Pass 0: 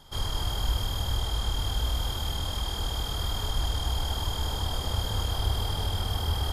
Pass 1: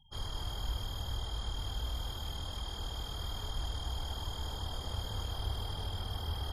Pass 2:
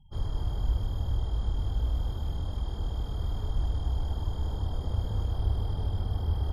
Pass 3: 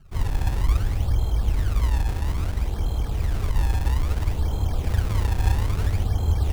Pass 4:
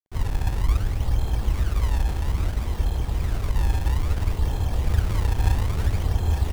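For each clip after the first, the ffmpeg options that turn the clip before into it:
-af "afftfilt=real='re*gte(hypot(re,im),0.00562)':imag='im*gte(hypot(re,im),0.00562)':win_size=1024:overlap=0.75,volume=0.355"
-af "tiltshelf=f=860:g=9.5"
-af "acrusher=samples=29:mix=1:aa=0.000001:lfo=1:lforange=46.4:lforate=0.6,volume=2.24"
-af "aeval=exprs='sgn(val(0))*max(abs(val(0))-0.00944,0)':c=same,aecho=1:1:864:0.473"

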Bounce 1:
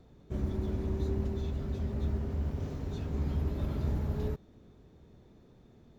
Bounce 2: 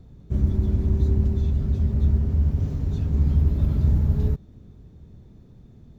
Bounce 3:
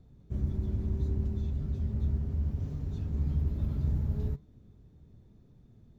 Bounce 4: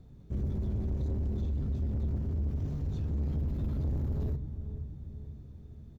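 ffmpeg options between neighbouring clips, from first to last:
-af "bass=f=250:g=13,treble=f=4000:g=3"
-af "flanger=delay=6.6:depth=3:regen=82:speed=1.8:shape=sinusoidal,volume=0.562"
-filter_complex "[0:a]asplit=2[s0][s1];[s1]adelay=484,lowpass=f=890:p=1,volume=0.237,asplit=2[s2][s3];[s3]adelay=484,lowpass=f=890:p=1,volume=0.52,asplit=2[s4][s5];[s5]adelay=484,lowpass=f=890:p=1,volume=0.52,asplit=2[s6][s7];[s7]adelay=484,lowpass=f=890:p=1,volume=0.52,asplit=2[s8][s9];[s9]adelay=484,lowpass=f=890:p=1,volume=0.52[s10];[s0][s2][s4][s6][s8][s10]amix=inputs=6:normalize=0,asoftclip=type=tanh:threshold=0.0266,volume=1.58"

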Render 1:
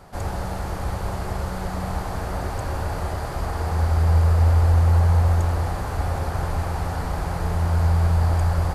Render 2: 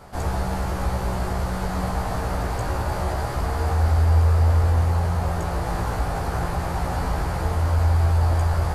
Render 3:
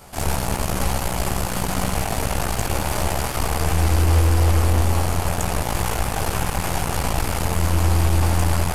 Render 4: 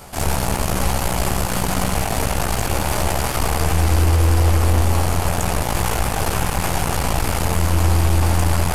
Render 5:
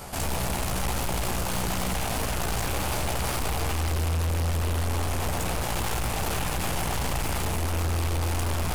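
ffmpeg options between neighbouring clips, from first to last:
-filter_complex "[0:a]asplit=2[s0][s1];[s1]alimiter=limit=0.119:level=0:latency=1,volume=0.891[s2];[s0][s2]amix=inputs=2:normalize=0,flanger=delay=15:depth=2.6:speed=0.25"
-af "aeval=exprs='0.355*(cos(1*acos(clip(val(0)/0.355,-1,1)))-cos(1*PI/2))+0.0631*(cos(8*acos(clip(val(0)/0.355,-1,1)))-cos(8*PI/2))':c=same,aexciter=amount=2.3:drive=4.4:freq=2400,bandreject=f=59.56:t=h:w=4,bandreject=f=119.12:t=h:w=4,bandreject=f=178.68:t=h:w=4,bandreject=f=238.24:t=h:w=4,bandreject=f=297.8:t=h:w=4,bandreject=f=357.36:t=h:w=4,bandreject=f=416.92:t=h:w=4,bandreject=f=476.48:t=h:w=4,bandreject=f=536.04:t=h:w=4,bandreject=f=595.6:t=h:w=4,bandreject=f=655.16:t=h:w=4,bandreject=f=714.72:t=h:w=4,bandreject=f=774.28:t=h:w=4,bandreject=f=833.84:t=h:w=4,bandreject=f=893.4:t=h:w=4,bandreject=f=952.96:t=h:w=4,bandreject=f=1012.52:t=h:w=4,bandreject=f=1072.08:t=h:w=4,bandreject=f=1131.64:t=h:w=4,bandreject=f=1191.2:t=h:w=4,bandreject=f=1250.76:t=h:w=4,bandreject=f=1310.32:t=h:w=4,bandreject=f=1369.88:t=h:w=4,bandreject=f=1429.44:t=h:w=4,bandreject=f=1489:t=h:w=4,bandreject=f=1548.56:t=h:w=4,bandreject=f=1608.12:t=h:w=4"
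-af "alimiter=limit=0.237:level=0:latency=1:release=29,areverse,acompressor=mode=upward:threshold=0.0501:ratio=2.5,areverse,volume=1.58"
-af "asoftclip=type=tanh:threshold=0.0708"

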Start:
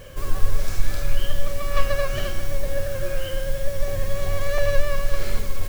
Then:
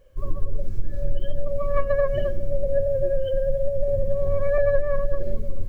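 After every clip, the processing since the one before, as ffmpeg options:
-af "afftdn=nr=24:nf=-23,equalizer=f=480:w=0.76:g=8.5,acompressor=threshold=0.2:ratio=6"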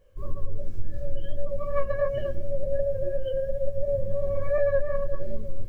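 -af "flanger=delay=17.5:depth=3:speed=2.8,volume=0.891"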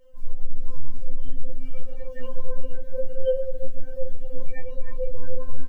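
-filter_complex "[0:a]alimiter=limit=0.119:level=0:latency=1:release=88,asplit=2[s0][s1];[s1]asplit=4[s2][s3][s4][s5];[s2]adelay=475,afreqshift=-72,volume=0.251[s6];[s3]adelay=950,afreqshift=-144,volume=0.0881[s7];[s4]adelay=1425,afreqshift=-216,volume=0.0309[s8];[s5]adelay=1900,afreqshift=-288,volume=0.0107[s9];[s6][s7][s8][s9]amix=inputs=4:normalize=0[s10];[s0][s10]amix=inputs=2:normalize=0,afftfilt=real='re*3.46*eq(mod(b,12),0)':imag='im*3.46*eq(mod(b,12),0)':win_size=2048:overlap=0.75,volume=1.41"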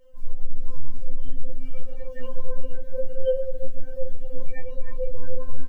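-af anull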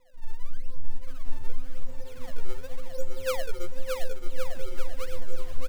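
-filter_complex "[0:a]acrusher=samples=28:mix=1:aa=0.000001:lfo=1:lforange=44.8:lforate=0.9,asplit=2[s0][s1];[s1]aecho=0:1:620|1116|1513|1830|2084:0.631|0.398|0.251|0.158|0.1[s2];[s0][s2]amix=inputs=2:normalize=0,volume=0.473"

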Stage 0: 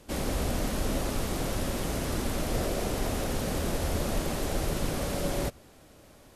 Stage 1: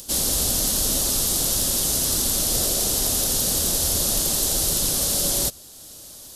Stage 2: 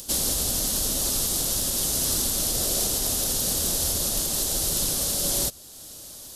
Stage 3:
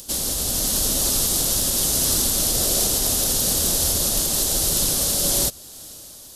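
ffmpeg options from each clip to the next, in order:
-af "aexciter=amount=4.9:drive=8.2:freq=3300,acompressor=mode=upward:threshold=0.0158:ratio=2.5"
-af "alimiter=limit=0.2:level=0:latency=1:release=325"
-af "dynaudnorm=f=120:g=9:m=1.68"

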